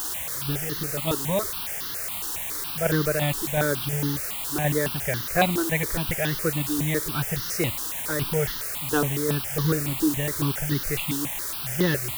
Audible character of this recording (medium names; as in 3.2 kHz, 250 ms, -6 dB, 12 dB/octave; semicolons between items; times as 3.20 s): tremolo saw down 2.8 Hz, depth 50%; a quantiser's noise floor 6-bit, dither triangular; notches that jump at a steady rate 7.2 Hz 610–2400 Hz